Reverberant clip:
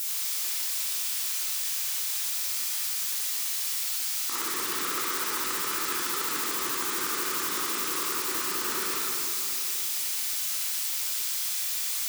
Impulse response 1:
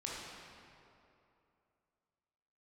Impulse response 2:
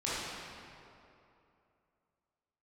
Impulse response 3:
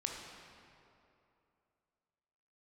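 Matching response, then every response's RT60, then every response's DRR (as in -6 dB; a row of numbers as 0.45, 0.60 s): 2; 2.8, 2.8, 2.8 s; -5.0, -10.0, 0.0 dB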